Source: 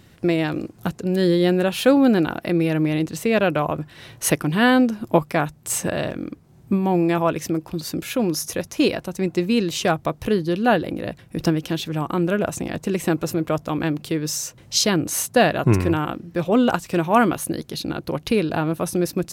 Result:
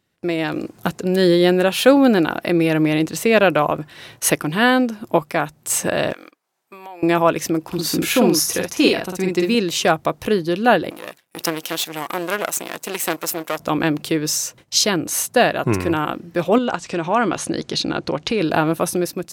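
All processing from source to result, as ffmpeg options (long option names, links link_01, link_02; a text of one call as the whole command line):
ffmpeg -i in.wav -filter_complex "[0:a]asettb=1/sr,asplit=3[link_01][link_02][link_03];[link_01]atrim=end=6.134[link_04];[link_02]atrim=start=6.13:end=7.03,asetpts=PTS-STARTPTS,afade=type=in:duration=0.004:curve=qsin,afade=type=out:start_time=0.896:duration=0.004:curve=qsin,highpass=800,acompressor=threshold=-40dB:ratio=4:attack=3.2:release=140:knee=1:detection=peak[link_05];[link_03]atrim=start=7.026[link_06];[link_04][link_05]acrossfade=duration=0.004:curve1=hsin:curve2=qsin[link_07];[link_07][link_06]acrossfade=duration=0.004:curve1=qsin:curve2=hsin,asettb=1/sr,asplit=3[link_08][link_09][link_10];[link_08]atrim=end=7.674[link_11];[link_09]atrim=start=7.67:end=9.55,asetpts=PTS-STARTPTS,afade=type=in:duration=0.004:curve=qsin,afade=type=out:start_time=1.876:duration=0.004:curve=qsin,bandreject=frequency=580:width=6.4,asplit=2[link_12][link_13];[link_13]adelay=49,volume=-3dB[link_14];[link_12][link_14]amix=inputs=2:normalize=0,atrim=end_sample=82908[link_15];[link_10]atrim=start=9.546[link_16];[link_11][link_15]acrossfade=duration=0.004:curve1=hsin:curve2=qsin[link_17];[link_17][link_16]acrossfade=duration=0.004:curve1=qsin:curve2=hsin,asettb=1/sr,asplit=3[link_18][link_19][link_20];[link_18]atrim=end=10.904[link_21];[link_19]atrim=start=10.9:end=13.6,asetpts=PTS-STARTPTS,afade=type=in:duration=0.004:curve=qsin,afade=type=out:start_time=2.696:duration=0.004:curve=qsin,aeval=exprs='if(lt(val(0),0),0.251*val(0),val(0))':channel_layout=same,highpass=frequency=690:poles=1,highshelf=frequency=7700:gain=11[link_22];[link_20]atrim=start=13.596[link_23];[link_21][link_22]acrossfade=duration=0.004:curve1=hsin:curve2=qsin[link_24];[link_24][link_23]acrossfade=duration=0.004:curve1=qsin:curve2=hsin,asettb=1/sr,asplit=3[link_25][link_26][link_27];[link_25]atrim=end=16.584[link_28];[link_26]atrim=start=16.58:end=18.41,asetpts=PTS-STARTPTS,afade=type=in:duration=0.004:curve=qsin,afade=type=out:start_time=1.826:duration=0.004:curve=qsin,lowpass=frequency=7600:width=0.5412,lowpass=frequency=7600:width=1.3066,acompressor=threshold=-25dB:ratio=2:attack=3.2:release=140:knee=1:detection=peak[link_29];[link_27]atrim=start=18.406[link_30];[link_28][link_29]acrossfade=duration=0.004:curve1=hsin:curve2=qsin[link_31];[link_31][link_30]acrossfade=duration=0.004:curve1=qsin:curve2=hsin,agate=range=-16dB:threshold=-44dB:ratio=16:detection=peak,lowshelf=frequency=190:gain=-11,dynaudnorm=framelen=110:gausssize=9:maxgain=11.5dB,volume=-1dB" out.wav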